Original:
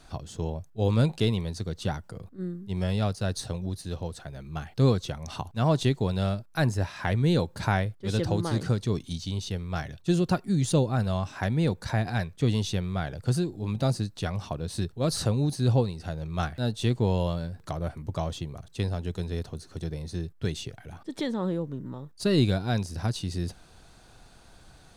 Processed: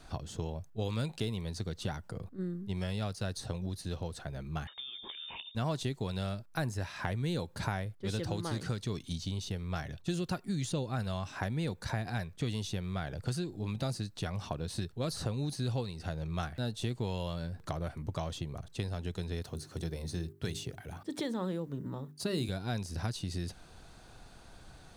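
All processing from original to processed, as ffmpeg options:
-filter_complex "[0:a]asettb=1/sr,asplit=3[a][b][c];[a]atrim=end=4.674[d];[b]atrim=start=4.67:end=5.55,asetpts=PTS-STARTPTS,afade=t=in:d=0.004:c=qsin,afade=t=out:st=0.876:d=0.004:c=qsin,bandreject=f=60:t=h:w=6,bandreject=f=120:t=h:w=6,bandreject=f=180:t=h:w=6,bandreject=f=240:t=h:w=6,bandreject=f=300:t=h:w=6,bandreject=f=360:t=h:w=6,bandreject=f=420:t=h:w=6,bandreject=f=480:t=h:w=6,bandreject=f=540:t=h:w=6,acompressor=threshold=-33dB:ratio=12:attack=3.2:release=140:knee=1:detection=peak,lowpass=f=3.1k:t=q:w=0.5098,lowpass=f=3.1k:t=q:w=0.6013,lowpass=f=3.1k:t=q:w=0.9,lowpass=f=3.1k:t=q:w=2.563,afreqshift=-3700[e];[c]atrim=start=5.546[f];[d][e]acrossfade=d=0.004:c1=hsin:c2=qsin[g];[g][f]acrossfade=d=0.004:c1=qsin:c2=hsin,asettb=1/sr,asplit=3[h][i][j];[h]atrim=end=19.434[k];[i]atrim=start=19.43:end=22.49,asetpts=PTS-STARTPTS,afade=t=in:d=0.004:c=qsin,afade=t=out:st=3.056:d=0.004:c=qsin,highpass=57,highshelf=f=9k:g=10,bandreject=f=50:t=h:w=6,bandreject=f=100:t=h:w=6,bandreject=f=150:t=h:w=6,bandreject=f=200:t=h:w=6,bandreject=f=250:t=h:w=6,bandreject=f=300:t=h:w=6,bandreject=f=350:t=h:w=6,bandreject=f=400:t=h:w=6[l];[j]atrim=start=22.486[m];[k][l]acrossfade=d=0.004:c1=hsin:c2=qsin[n];[n][m]acrossfade=d=0.004:c1=qsin:c2=hsin,equalizer=f=9.2k:w=0.34:g=-2.5,acrossover=split=1400|6700[o][p][q];[o]acompressor=threshold=-33dB:ratio=4[r];[p]acompressor=threshold=-43dB:ratio=4[s];[q]acompressor=threshold=-48dB:ratio=4[t];[r][s][t]amix=inputs=3:normalize=0"

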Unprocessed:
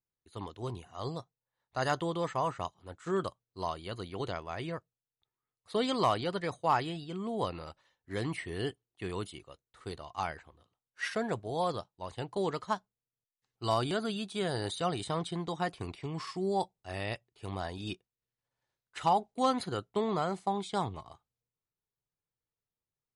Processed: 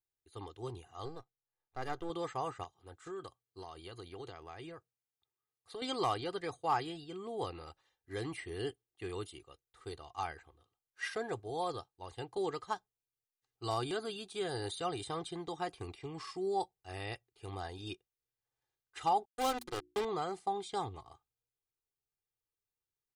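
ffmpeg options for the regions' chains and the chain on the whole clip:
-filter_complex "[0:a]asettb=1/sr,asplit=3[a][b][c];[a]atrim=end=1.054[d];[b]atrim=start=1.05:end=2.1,asetpts=PTS-STARTPTS,afade=t=in:d=0.004:c=qsin,afade=t=out:st=1.046:d=0.004:c=qsin,aeval=exprs='if(lt(val(0),0),0.251*val(0),val(0))':c=same,highshelf=f=2.3k:g=-10.5[e];[c]atrim=start=2.096[f];[d][e]acrossfade=d=0.004:c1=hsin:c2=qsin[g];[g][f]acrossfade=d=0.004:c1=qsin:c2=hsin,asettb=1/sr,asplit=3[h][i][j];[h]atrim=end=2.634[k];[i]atrim=start=2.63:end=5.82,asetpts=PTS-STARTPTS,afade=t=in:d=0.004:c=qsin,afade=t=out:st=3.186:d=0.004:c=qsin,highpass=60,acompressor=threshold=-38dB:ratio=4:attack=3.2:release=140:knee=1:detection=peak[l];[j]atrim=start=5.816[m];[k][l]acrossfade=d=0.004:c1=hsin:c2=qsin[n];[n][m]acrossfade=d=0.004:c1=qsin:c2=hsin,asettb=1/sr,asplit=3[o][p][q];[o]atrim=end=19.254[r];[p]atrim=start=19.25:end=20.05,asetpts=PTS-STARTPTS,afade=t=in:d=0.004:c=qsin,afade=t=out:st=0.796:d=0.004:c=qsin,acrusher=bits=4:mix=0:aa=0.5,bandreject=f=60:t=h:w=6,bandreject=f=120:t=h:w=6,bandreject=f=180:t=h:w=6,bandreject=f=240:t=h:w=6,bandreject=f=300:t=h:w=6,bandreject=f=360:t=h:w=6[s];[q]atrim=start=20.046[t];[r][s]acrossfade=d=0.004:c1=hsin:c2=qsin[u];[u][t]acrossfade=d=0.004:c1=qsin:c2=hsin,highshelf=f=8.5k:g=4,aecho=1:1:2.5:0.61,volume=-6dB"

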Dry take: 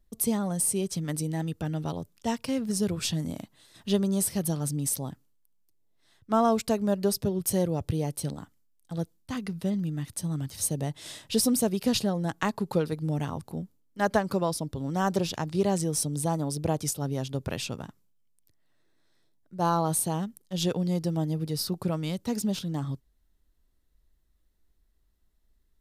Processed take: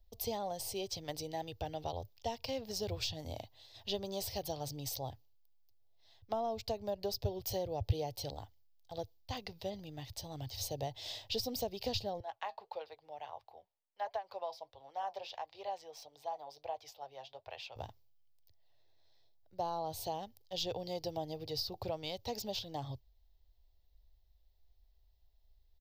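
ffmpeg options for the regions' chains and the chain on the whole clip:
-filter_complex "[0:a]asettb=1/sr,asplit=3[a][b][c];[a]atrim=end=12.204[d];[b]atrim=start=12.2:end=17.76,asetpts=PTS-STARTPTS,afade=t=in:d=0.004:c=qsin,afade=t=out:st=5.556:d=0.004:c=qsin,acrossover=split=600 3000:gain=0.0631 1 0.178[e][f][g];[e][f][g]amix=inputs=3:normalize=0,flanger=delay=2.6:depth=4.3:regen=-68:speed=1.5:shape=sinusoidal[h];[c]atrim=start=17.756[i];[d][h]acrossfade=d=0.004:c1=hsin:c2=qsin[j];[j][i]acrossfade=d=0.004:c1=qsin:c2=hsin,firequalizer=gain_entry='entry(110,0);entry(160,-24);entry(470,-5);entry(760,2);entry(1300,-17);entry(2000,-8);entry(3000,-2);entry(4700,1);entry(9700,-26);entry(15000,3)':delay=0.05:min_phase=1,acrossover=split=270[k][l];[l]acompressor=threshold=-36dB:ratio=10[m];[k][m]amix=inputs=2:normalize=0,volume=1.5dB"

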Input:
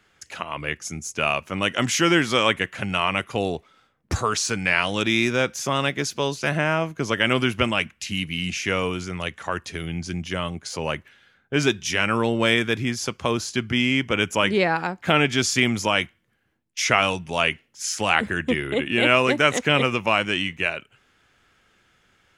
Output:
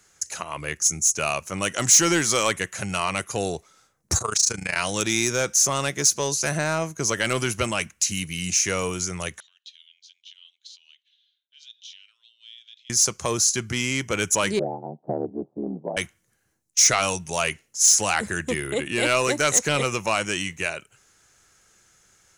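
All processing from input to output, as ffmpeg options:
-filter_complex "[0:a]asettb=1/sr,asplit=3[a][b][c];[a]atrim=end=4.184[d];[b]atrim=start=4.18:end=4.76,asetpts=PTS-STARTPTS,afade=t=in:d=0.004:c=qsin,afade=t=out:st=0.576:d=0.004:c=qsin,acrossover=split=6300[e][f];[f]acompressor=threshold=-35dB:ratio=4:attack=1:release=60[g];[e][g]amix=inputs=2:normalize=0,tremolo=f=27:d=0.889[h];[c]atrim=start=4.756[i];[d][h]acrossfade=d=0.004:c1=hsin:c2=qsin[j];[j][i]acrossfade=d=0.004:c1=qsin:c2=hsin,asettb=1/sr,asplit=3[k][l][m];[k]atrim=end=9.404[n];[l]atrim=start=9.4:end=12.9,asetpts=PTS-STARTPTS,afade=t=in:d=0.004:c=qsin,afade=t=out:st=3.496:d=0.004:c=qsin,acompressor=threshold=-28dB:ratio=6:attack=3.2:release=140:knee=1:detection=peak,asuperpass=centerf=3400:order=4:qfactor=4[o];[m]atrim=start=12.896[p];[n][o]acrossfade=d=0.004:c1=hsin:c2=qsin[q];[q][p]acrossfade=d=0.004:c1=qsin:c2=hsin,asettb=1/sr,asplit=3[r][s][t];[r]atrim=end=14.594[u];[s]atrim=start=14.59:end=15.97,asetpts=PTS-STARTPTS,afade=t=in:d=0.004:c=qsin,afade=t=out:st=1.376:d=0.004:c=qsin,asuperpass=centerf=360:order=12:qfactor=0.58,aeval=exprs='val(0)*sin(2*PI*37*n/s)':c=same[v];[t]atrim=start=15.966[w];[u][v]acrossfade=d=0.004:c1=hsin:c2=qsin[x];[x][w]acrossfade=d=0.004:c1=qsin:c2=hsin,highshelf=f=4.9k:t=q:w=3:g=9.5,acontrast=81,equalizer=f=250:t=o:w=0.33:g=-7,equalizer=f=4k:t=o:w=0.33:g=11,equalizer=f=10k:t=o:w=0.33:g=4,volume=-8dB"

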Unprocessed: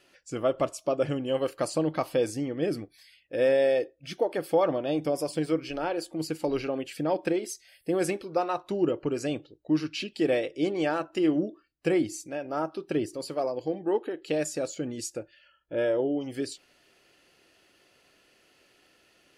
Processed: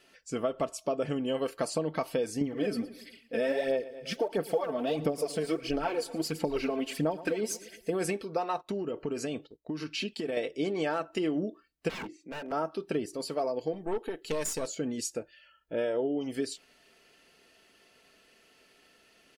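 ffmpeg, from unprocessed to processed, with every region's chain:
-filter_complex "[0:a]asettb=1/sr,asplit=3[a][b][c];[a]atrim=end=2.414[d];[b]atrim=start=2.41:end=7.9,asetpts=PTS-STARTPTS,afade=t=in:d=0.004:c=qsin,afade=t=out:st=5.486:d=0.004:c=qsin,aphaser=in_gain=1:out_gain=1:delay=4.7:decay=0.65:speed=1.5:type=sinusoidal,aecho=1:1:115|230|345|460:0.1|0.054|0.0292|0.0157,atrim=end_sample=242109[e];[c]atrim=start=7.896[f];[d][e]acrossfade=d=0.004:c1=hsin:c2=qsin[g];[g][f]acrossfade=d=0.004:c1=qsin:c2=hsin,asettb=1/sr,asplit=3[h][i][j];[h]atrim=end=8.614[k];[i]atrim=start=8.61:end=10.37,asetpts=PTS-STARTPTS,afade=t=in:d=0.004:c=qsin,afade=t=out:st=1.756:d=0.004:c=qsin,acompressor=threshold=-29dB:ratio=10:attack=3.2:release=140:knee=1:detection=peak,agate=range=-11dB:threshold=-56dB:ratio=16:release=100:detection=peak[l];[j]atrim=start=10.366[m];[k][l]acrossfade=d=0.004:c1=hsin:c2=qsin[n];[n][m]acrossfade=d=0.004:c1=qsin:c2=hsin,asettb=1/sr,asplit=3[o][p][q];[o]atrim=end=11.894[r];[p]atrim=start=11.89:end=12.52,asetpts=PTS-STARTPTS,afade=t=in:d=0.004:c=qsin,afade=t=out:st=0.626:d=0.004:c=qsin,lowpass=5.5k,acrossover=split=160 2400:gain=0.0891 1 0.0794[s][t][u];[s][t][u]amix=inputs=3:normalize=0,aeval=exprs='0.0211*(abs(mod(val(0)/0.0211+3,4)-2)-1)':c=same[v];[q]atrim=start=12.516[w];[r][v]acrossfade=d=0.004:c1=hsin:c2=qsin[x];[x][w]acrossfade=d=0.004:c1=qsin:c2=hsin,asettb=1/sr,asplit=3[y][z][aa];[y]atrim=end=13.734[ab];[z]atrim=start=13.73:end=14.67,asetpts=PTS-STARTPTS,afade=t=in:d=0.004:c=qsin,afade=t=out:st=0.936:d=0.004:c=qsin,aemphasis=mode=production:type=cd,aeval=exprs='(tanh(17.8*val(0)+0.55)-tanh(0.55))/17.8':c=same[ac];[aa]atrim=start=14.666[ad];[ab][ac]acrossfade=d=0.004:c1=hsin:c2=qsin[ae];[ae][ad]acrossfade=d=0.004:c1=qsin:c2=hsin,aecho=1:1:4.5:0.44,acompressor=threshold=-26dB:ratio=6"

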